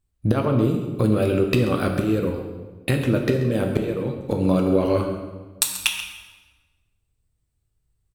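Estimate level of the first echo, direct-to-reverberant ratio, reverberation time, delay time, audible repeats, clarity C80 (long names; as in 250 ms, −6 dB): −13.0 dB, 3.0 dB, 1.3 s, 134 ms, 1, 6.5 dB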